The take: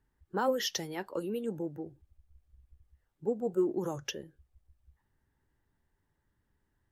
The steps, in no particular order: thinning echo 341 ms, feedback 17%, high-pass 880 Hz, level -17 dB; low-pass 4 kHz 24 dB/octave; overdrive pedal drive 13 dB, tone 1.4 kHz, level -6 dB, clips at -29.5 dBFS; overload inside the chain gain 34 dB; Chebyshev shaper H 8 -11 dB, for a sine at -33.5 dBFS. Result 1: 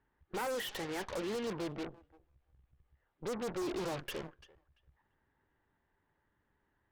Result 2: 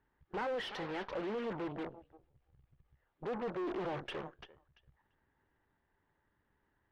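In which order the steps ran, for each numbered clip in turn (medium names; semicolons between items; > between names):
low-pass > overdrive pedal > overload inside the chain > thinning echo > Chebyshev shaper; thinning echo > Chebyshev shaper > low-pass > overload inside the chain > overdrive pedal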